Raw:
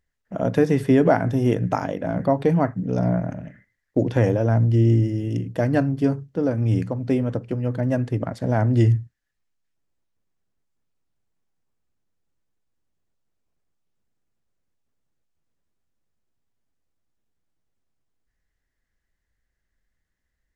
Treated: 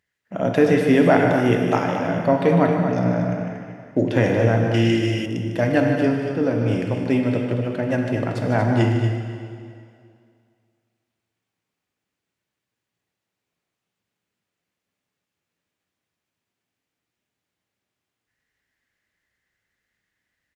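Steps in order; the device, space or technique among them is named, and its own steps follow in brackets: stadium PA (HPF 120 Hz 12 dB/oct; bell 2500 Hz +7.5 dB 1.5 oct; loudspeakers at several distances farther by 52 m -10 dB, 80 m -8 dB; reverb RT60 2.3 s, pre-delay 4 ms, DRR 3 dB); 4.74–5.26 resonant high shelf 1700 Hz +8.5 dB, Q 1.5

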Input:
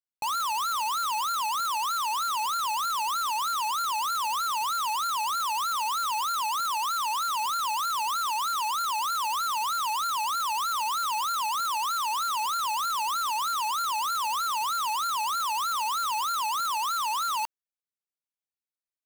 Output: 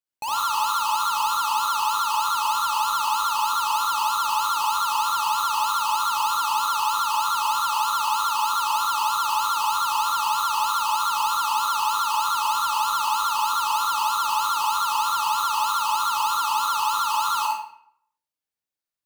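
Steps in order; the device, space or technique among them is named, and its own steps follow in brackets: 7.61–8.74 HPF 92 Hz; bathroom (reverb RT60 0.65 s, pre-delay 55 ms, DRR -2.5 dB)

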